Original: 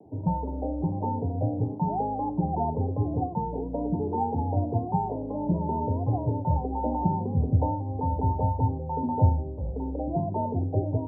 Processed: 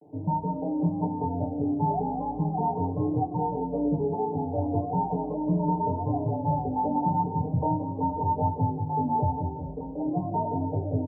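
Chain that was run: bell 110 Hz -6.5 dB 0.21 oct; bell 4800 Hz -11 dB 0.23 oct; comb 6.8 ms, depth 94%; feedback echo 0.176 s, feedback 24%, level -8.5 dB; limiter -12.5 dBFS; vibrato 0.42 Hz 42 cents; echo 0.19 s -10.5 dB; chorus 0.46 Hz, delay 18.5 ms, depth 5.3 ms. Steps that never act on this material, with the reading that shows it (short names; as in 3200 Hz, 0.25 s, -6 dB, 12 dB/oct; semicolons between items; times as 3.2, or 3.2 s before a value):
bell 4800 Hz: input band ends at 960 Hz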